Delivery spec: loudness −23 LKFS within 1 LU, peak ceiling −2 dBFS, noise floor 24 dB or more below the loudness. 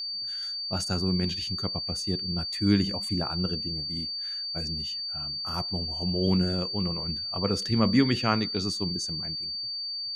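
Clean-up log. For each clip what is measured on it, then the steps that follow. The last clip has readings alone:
interfering tone 4,600 Hz; level of the tone −31 dBFS; integrated loudness −27.5 LKFS; sample peak −9.0 dBFS; target loudness −23.0 LKFS
→ notch filter 4,600 Hz, Q 30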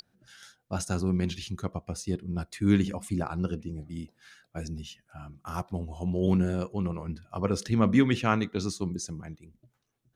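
interfering tone none found; integrated loudness −29.5 LKFS; sample peak −10.0 dBFS; target loudness −23.0 LKFS
→ level +6.5 dB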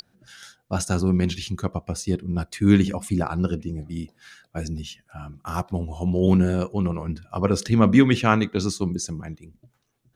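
integrated loudness −23.0 LKFS; sample peak −3.5 dBFS; background noise floor −68 dBFS

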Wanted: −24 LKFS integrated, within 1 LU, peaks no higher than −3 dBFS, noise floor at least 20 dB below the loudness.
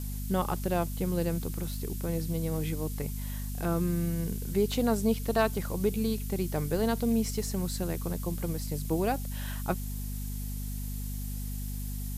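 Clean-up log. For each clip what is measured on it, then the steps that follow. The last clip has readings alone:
mains hum 50 Hz; hum harmonics up to 250 Hz; level of the hum −33 dBFS; background noise floor −35 dBFS; target noise floor −52 dBFS; integrated loudness −31.5 LKFS; sample peak −14.0 dBFS; target loudness −24.0 LKFS
→ hum removal 50 Hz, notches 5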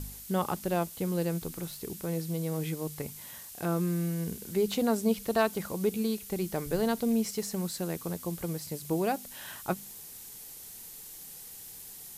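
mains hum none found; background noise floor −46 dBFS; target noise floor −52 dBFS
→ broadband denoise 6 dB, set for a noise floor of −46 dBFS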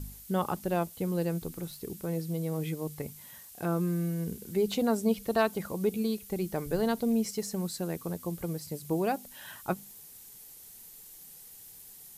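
background noise floor −51 dBFS; target noise floor −52 dBFS
→ broadband denoise 6 dB, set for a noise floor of −51 dBFS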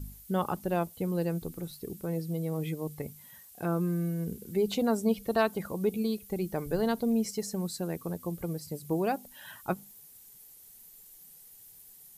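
background noise floor −54 dBFS; integrated loudness −32.0 LKFS; sample peak −15.0 dBFS; target loudness −24.0 LKFS
→ level +8 dB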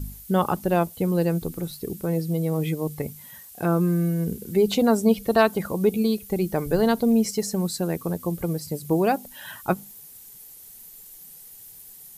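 integrated loudness −24.0 LKFS; sample peak −7.0 dBFS; background noise floor −46 dBFS

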